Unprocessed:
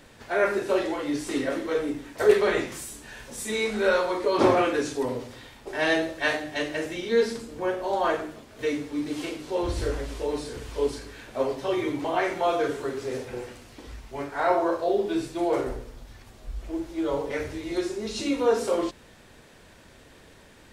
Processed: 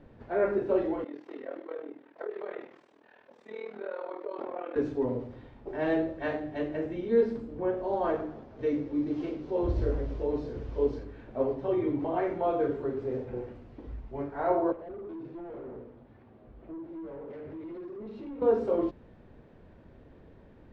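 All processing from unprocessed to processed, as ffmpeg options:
ffmpeg -i in.wav -filter_complex "[0:a]asettb=1/sr,asplit=3[link_01][link_02][link_03];[link_01]atrim=end=1.044[link_04];[link_02]atrim=start=1.04:end=4.76,asetpts=PTS-STARTPTS,afade=type=in:duration=0.004:curve=qsin,afade=type=out:start_time=3.716:duration=0.004:curve=qsin,acompressor=threshold=-22dB:ratio=6:attack=3.2:release=140:knee=1:detection=peak,tremolo=f=40:d=0.857,highpass=550,lowpass=4500[link_05];[link_03]atrim=start=4.756[link_06];[link_04][link_05]acrossfade=duration=0.004:curve1=hsin:curve2=qsin[link_07];[link_07][link_06]acrossfade=duration=0.004:curve1=qsin:curve2=hsin,asettb=1/sr,asplit=3[link_08][link_09][link_10];[link_08]atrim=end=7.774[link_11];[link_09]atrim=start=7.77:end=11.04,asetpts=PTS-STARTPTS,afade=type=in:duration=0.004:curve=qsin,afade=type=out:start_time=3.266:duration=0.004:curve=qsin,lowpass=frequency=6000:width_type=q:width=2,asplit=6[link_12][link_13][link_14][link_15][link_16][link_17];[link_13]adelay=115,afreqshift=34,volume=-19dB[link_18];[link_14]adelay=230,afreqshift=68,volume=-24.2dB[link_19];[link_15]adelay=345,afreqshift=102,volume=-29.4dB[link_20];[link_16]adelay=460,afreqshift=136,volume=-34.6dB[link_21];[link_17]adelay=575,afreqshift=170,volume=-39.8dB[link_22];[link_12][link_18][link_19][link_20][link_21][link_22]amix=inputs=6:normalize=0,atrim=end_sample=144207[link_23];[link_10]atrim=start=11.036[link_24];[link_11][link_23]acrossfade=duration=0.004:curve1=hsin:curve2=qsin[link_25];[link_25][link_24]acrossfade=duration=0.004:curve1=qsin:curve2=hsin,asettb=1/sr,asplit=3[link_26][link_27][link_28];[link_26]atrim=end=14.724[link_29];[link_27]atrim=start=14.72:end=18.42,asetpts=PTS-STARTPTS,afade=type=in:duration=0.004:curve=qsin,afade=type=out:start_time=3.696:duration=0.004:curve=qsin,highpass=160,lowpass=3300,acompressor=threshold=-34dB:ratio=3:attack=3.2:release=140:knee=1:detection=peak,asoftclip=type=hard:threshold=-37.5dB[link_30];[link_28]atrim=start=18.416[link_31];[link_29][link_30]acrossfade=duration=0.004:curve1=hsin:curve2=qsin[link_32];[link_32][link_31]acrossfade=duration=0.004:curve1=qsin:curve2=hsin,lowpass=3300,tiltshelf=frequency=1100:gain=10,volume=-8.5dB" out.wav

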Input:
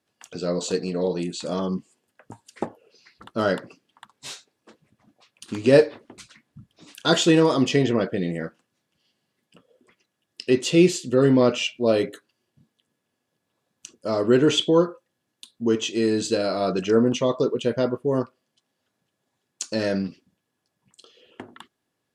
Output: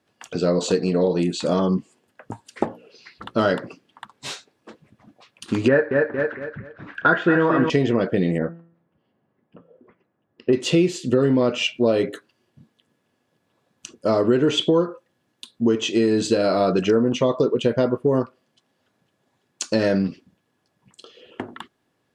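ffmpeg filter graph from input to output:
ffmpeg -i in.wav -filter_complex "[0:a]asettb=1/sr,asplit=3[link_01][link_02][link_03];[link_01]atrim=end=2.634[link_04];[link_02]atrim=start=2.63:end=3.54,asetpts=PTS-STARTPTS,afade=type=in:duration=0.004:curve=qsin,afade=type=out:start_time=0.906:duration=0.004:curve=qsin,equalizer=frequency=3400:width=1:gain=4,bandreject=frequency=60:width_type=h:width=6,bandreject=frequency=120:width_type=h:width=6,bandreject=frequency=180:width_type=h:width=6,bandreject=frequency=240:width_type=h:width=6,bandreject=frequency=300:width_type=h:width=6,bandreject=frequency=360:width_type=h:width=6,bandreject=frequency=420:width_type=h:width=6,bandreject=frequency=480:width_type=h:width=6,bandreject=frequency=540:width_type=h:width=6[link_05];[link_03]atrim=start=3.536[link_06];[link_04][link_05]acrossfade=duration=0.004:curve1=hsin:curve2=qsin[link_07];[link_07][link_06]acrossfade=duration=0.004:curve1=qsin:curve2=hsin,asettb=1/sr,asplit=3[link_08][link_09][link_10];[link_08]atrim=end=5.684[link_11];[link_09]atrim=start=5.68:end=7.7,asetpts=PTS-STARTPTS,afade=type=in:duration=0.004:curve=qsin,afade=type=out:start_time=2.016:duration=0.004:curve=qsin,lowpass=frequency=1600:width_type=q:width=5.9,aecho=1:1:229|458|687|916:0.422|0.127|0.038|0.0114,atrim=end_sample=89082[link_12];[link_10]atrim=start=7.696[link_13];[link_11][link_12]acrossfade=duration=0.004:curve1=hsin:curve2=qsin[link_14];[link_14][link_13]acrossfade=duration=0.004:curve1=qsin:curve2=hsin,asettb=1/sr,asplit=3[link_15][link_16][link_17];[link_15]atrim=end=8.384[link_18];[link_16]atrim=start=8.38:end=10.53,asetpts=PTS-STARTPTS,afade=type=in:duration=0.004:curve=qsin,afade=type=out:start_time=2.146:duration=0.004:curve=qsin,lowpass=1200,bandreject=frequency=167.8:width_type=h:width=4,bandreject=frequency=335.6:width_type=h:width=4,bandreject=frequency=503.4:width_type=h:width=4,bandreject=frequency=671.2:width_type=h:width=4,bandreject=frequency=839:width_type=h:width=4,bandreject=frequency=1006.8:width_type=h:width=4,bandreject=frequency=1174.6:width_type=h:width=4,bandreject=frequency=1342.4:width_type=h:width=4,bandreject=frequency=1510.2:width_type=h:width=4,bandreject=frequency=1678:width_type=h:width=4,bandreject=frequency=1845.8:width_type=h:width=4,bandreject=frequency=2013.6:width_type=h:width=4,bandreject=frequency=2181.4:width_type=h:width=4,bandreject=frequency=2349.2:width_type=h:width=4,bandreject=frequency=2517:width_type=h:width=4,bandreject=frequency=2684.8:width_type=h:width=4,bandreject=frequency=2852.6:width_type=h:width=4,bandreject=frequency=3020.4:width_type=h:width=4,bandreject=frequency=3188.2:width_type=h:width=4,bandreject=frequency=3356:width_type=h:width=4,bandreject=frequency=3523.8:width_type=h:width=4,bandreject=frequency=3691.6:width_type=h:width=4,bandreject=frequency=3859.4:width_type=h:width=4,bandreject=frequency=4027.2:width_type=h:width=4,bandreject=frequency=4195:width_type=h:width=4,bandreject=frequency=4362.8:width_type=h:width=4,bandreject=frequency=4530.6:width_type=h:width=4,bandreject=frequency=4698.4:width_type=h:width=4,bandreject=frequency=4866.2:width_type=h:width=4,bandreject=frequency=5034:width_type=h:width=4,bandreject=frequency=5201.8:width_type=h:width=4,bandreject=frequency=5369.6:width_type=h:width=4,bandreject=frequency=5537.4:width_type=h:width=4,bandreject=frequency=5705.2:width_type=h:width=4,bandreject=frequency=5873:width_type=h:width=4,bandreject=frequency=6040.8:width_type=h:width=4,bandreject=frequency=6208.6:width_type=h:width=4[link_19];[link_17]atrim=start=10.526[link_20];[link_18][link_19]acrossfade=duration=0.004:curve1=hsin:curve2=qsin[link_21];[link_21][link_20]acrossfade=duration=0.004:curve1=qsin:curve2=hsin,highshelf=frequency=4300:gain=-9,acompressor=threshold=-24dB:ratio=5,volume=8.5dB" out.wav

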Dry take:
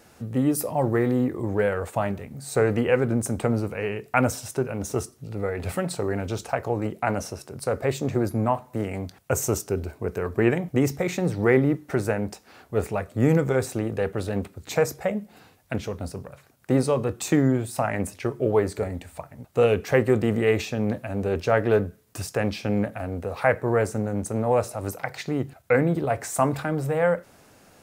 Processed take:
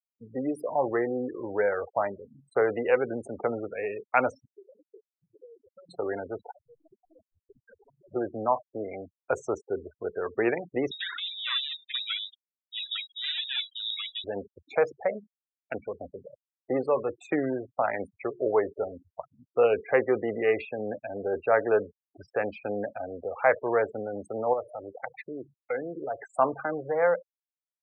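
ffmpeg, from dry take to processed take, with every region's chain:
ffmpeg -i in.wav -filter_complex "[0:a]asettb=1/sr,asplit=3[link_01][link_02][link_03];[link_01]atrim=end=4.454[link_04];[link_02]atrim=start=4.45:end=5.89,asetpts=PTS-STARTPTS,afade=type=in:duration=0.004:curve=qsin,afade=type=out:start_time=1.436:duration=0.004:curve=qsin,highpass=frequency=630:poles=1,acompressor=threshold=-40dB:ratio=12:attack=3.2:release=140:knee=1:detection=peak[link_05];[link_03]atrim=start=5.886[link_06];[link_04][link_05]acrossfade=duration=0.004:curve1=hsin:curve2=qsin[link_07];[link_07][link_06]acrossfade=duration=0.004:curve1=qsin:curve2=hsin,asettb=1/sr,asplit=3[link_08][link_09][link_10];[link_08]atrim=end=6.514[link_11];[link_09]atrim=start=6.51:end=8.12,asetpts=PTS-STARTPTS,afade=type=in:duration=0.004:curve=qsin,afade=type=out:start_time=1.606:duration=0.004:curve=qsin,acompressor=threshold=-36dB:ratio=10:attack=3.2:release=140:knee=1:detection=peak,aeval=exprs='(mod(66.8*val(0)+1,2)-1)/66.8':channel_layout=same[link_12];[link_10]atrim=start=8.116[link_13];[link_11][link_12]acrossfade=duration=0.004:curve1=hsin:curve2=qsin[link_14];[link_14][link_13]acrossfade=duration=0.004:curve1=qsin:curve2=hsin,asettb=1/sr,asplit=3[link_15][link_16][link_17];[link_15]atrim=end=10.914[link_18];[link_16]atrim=start=10.91:end=14.24,asetpts=PTS-STARTPTS,afade=type=in:duration=0.004:curve=qsin,afade=type=out:start_time=3.326:duration=0.004:curve=qsin,asoftclip=type=hard:threshold=-20.5dB,aphaser=in_gain=1:out_gain=1:delay=3.9:decay=0.61:speed=1:type=triangular,lowpass=frequency=3300:width_type=q:width=0.5098,lowpass=frequency=3300:width_type=q:width=0.6013,lowpass=frequency=3300:width_type=q:width=0.9,lowpass=frequency=3300:width_type=q:width=2.563,afreqshift=-3900[link_19];[link_17]atrim=start=14.236[link_20];[link_18][link_19]acrossfade=duration=0.004:curve1=hsin:curve2=qsin[link_21];[link_21][link_20]acrossfade=duration=0.004:curve1=qsin:curve2=hsin,asettb=1/sr,asplit=3[link_22][link_23][link_24];[link_22]atrim=end=24.534[link_25];[link_23]atrim=start=24.53:end=26.28,asetpts=PTS-STARTPTS,afade=type=in:duration=0.004:curve=qsin,afade=type=out:start_time=1.746:duration=0.004:curve=qsin,equalizer=frequency=340:width=2:gain=2.5,acompressor=threshold=-31dB:ratio=2:attack=3.2:release=140:knee=1:detection=peak[link_26];[link_24]atrim=start=26.276[link_27];[link_25][link_26]acrossfade=duration=0.004:curve1=hsin:curve2=qsin[link_28];[link_28][link_27]acrossfade=duration=0.004:curve1=qsin:curve2=hsin,highshelf=frequency=6600:gain=-9.5,afftfilt=real='re*gte(hypot(re,im),0.0355)':imag='im*gte(hypot(re,im),0.0355)':win_size=1024:overlap=0.75,acrossover=split=350 3000:gain=0.1 1 0.178[link_29][link_30][link_31];[link_29][link_30][link_31]amix=inputs=3:normalize=0" out.wav

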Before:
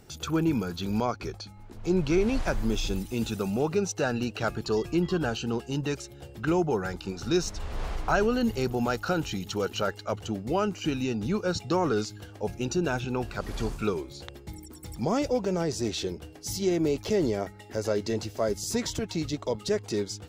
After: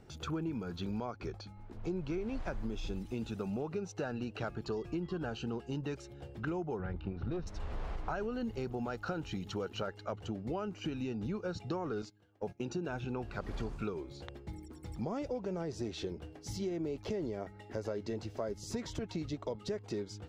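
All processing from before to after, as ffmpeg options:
ffmpeg -i in.wav -filter_complex "[0:a]asettb=1/sr,asplit=3[link_01][link_02][link_03];[link_01]atrim=end=6.794[link_04];[link_02]atrim=start=6.79:end=7.47,asetpts=PTS-STARTPTS,afade=type=in:duration=0.004:curve=qsin,afade=type=out:start_time=0.676:duration=0.004:curve=qsin,lowpass=frequency=3400:width=0.5412,lowpass=frequency=3400:width=1.3066,equalizer=frequency=65:width_type=o:width=2.9:gain=11.5,aeval=exprs='(tanh(10*val(0)+0.4)-tanh(0.4))/10':channel_layout=same[link_05];[link_03]atrim=start=7.466[link_06];[link_04][link_05]acrossfade=duration=0.004:curve1=hsin:curve2=qsin[link_07];[link_07][link_06]acrossfade=duration=0.004:curve1=qsin:curve2=hsin,asettb=1/sr,asplit=3[link_08][link_09][link_10];[link_08]atrim=end=12.024[link_11];[link_09]atrim=start=12.02:end=12.89,asetpts=PTS-STARTPTS,afade=type=in:duration=0.004:curve=qsin,afade=type=out:start_time=0.866:duration=0.004:curve=qsin,highpass=110,agate=range=-19dB:threshold=-39dB:ratio=16:release=100:detection=peak[link_12];[link_10]atrim=start=12.886[link_13];[link_11][link_12]acrossfade=duration=0.004:curve1=hsin:curve2=qsin[link_14];[link_14][link_13]acrossfade=duration=0.004:curve1=qsin:curve2=hsin,aemphasis=mode=reproduction:type=75kf,acompressor=threshold=-31dB:ratio=6,volume=-3dB" out.wav

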